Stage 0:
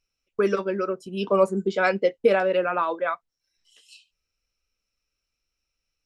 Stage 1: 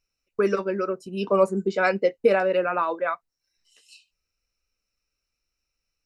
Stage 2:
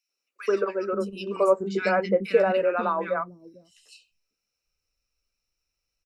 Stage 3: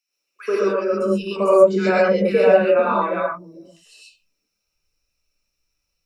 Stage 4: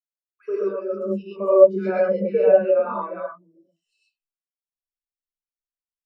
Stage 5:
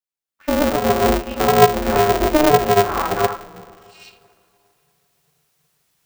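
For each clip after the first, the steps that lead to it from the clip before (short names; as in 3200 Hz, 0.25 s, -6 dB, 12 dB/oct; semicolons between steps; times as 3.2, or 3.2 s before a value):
notch 3300 Hz, Q 5.1
three bands offset in time highs, mids, lows 90/540 ms, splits 260/1700 Hz
non-linear reverb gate 0.15 s rising, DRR -4.5 dB
spectral expander 1.5:1
recorder AGC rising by 21 dB/s; two-slope reverb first 0.35 s, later 2.9 s, from -18 dB, DRR 7.5 dB; polarity switched at an audio rate 150 Hz; gain -1 dB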